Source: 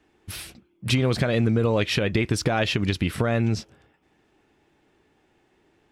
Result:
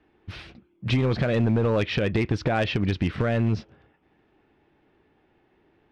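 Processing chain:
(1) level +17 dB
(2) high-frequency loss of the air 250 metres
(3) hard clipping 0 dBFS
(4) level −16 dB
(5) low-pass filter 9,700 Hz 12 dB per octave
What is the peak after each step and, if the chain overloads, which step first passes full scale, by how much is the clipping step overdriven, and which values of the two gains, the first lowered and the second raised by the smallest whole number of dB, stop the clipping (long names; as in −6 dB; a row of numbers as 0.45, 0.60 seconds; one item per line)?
+8.0, +7.5, 0.0, −16.0, −15.5 dBFS
step 1, 7.5 dB
step 1 +9 dB, step 4 −8 dB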